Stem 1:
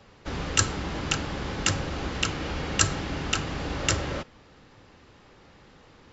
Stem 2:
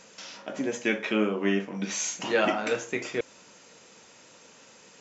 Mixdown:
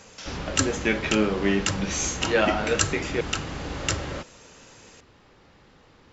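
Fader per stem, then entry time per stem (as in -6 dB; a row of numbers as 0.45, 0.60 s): -1.5, +2.5 dB; 0.00, 0.00 s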